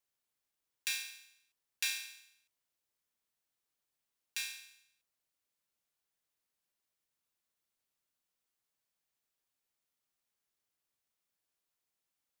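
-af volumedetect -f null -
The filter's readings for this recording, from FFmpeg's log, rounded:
mean_volume: -50.2 dB
max_volume: -14.1 dB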